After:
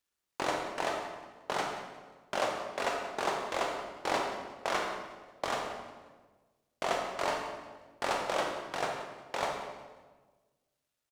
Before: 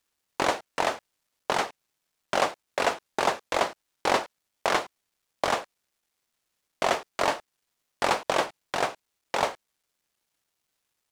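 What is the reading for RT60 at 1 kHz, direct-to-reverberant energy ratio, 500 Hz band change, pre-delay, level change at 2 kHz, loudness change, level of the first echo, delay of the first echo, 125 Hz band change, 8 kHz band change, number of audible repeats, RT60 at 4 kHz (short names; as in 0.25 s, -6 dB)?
1.3 s, 1.0 dB, -5.5 dB, 28 ms, -6.0 dB, -6.5 dB, -14.5 dB, 0.179 s, -5.0 dB, -6.5 dB, 2, 1.1 s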